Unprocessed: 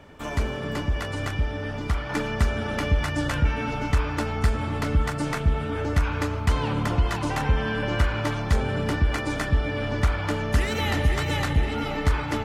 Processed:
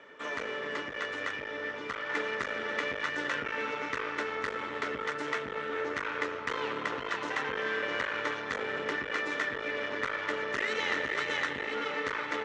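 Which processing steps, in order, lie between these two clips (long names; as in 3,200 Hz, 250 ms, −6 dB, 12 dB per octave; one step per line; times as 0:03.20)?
parametric band 3,300 Hz +5 dB 0.33 octaves
asymmetric clip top −32 dBFS
loudspeaker in its box 410–6,200 Hz, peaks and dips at 460 Hz +6 dB, 750 Hz −8 dB, 1,300 Hz +4 dB, 1,900 Hz +8 dB, 3,200 Hz −3 dB, 4,800 Hz −6 dB
level −3 dB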